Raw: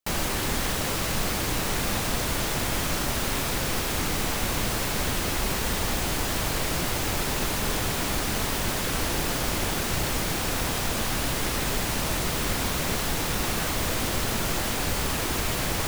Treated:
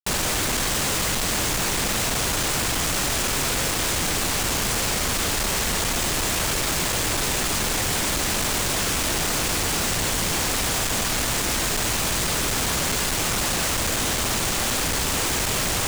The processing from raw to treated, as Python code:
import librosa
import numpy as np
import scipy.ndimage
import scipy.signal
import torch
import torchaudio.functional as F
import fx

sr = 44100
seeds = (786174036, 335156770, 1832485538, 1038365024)

y = fx.peak_eq(x, sr, hz=7900.0, db=12.0, octaves=1.2)
y = fx.schmitt(y, sr, flips_db=-28.5)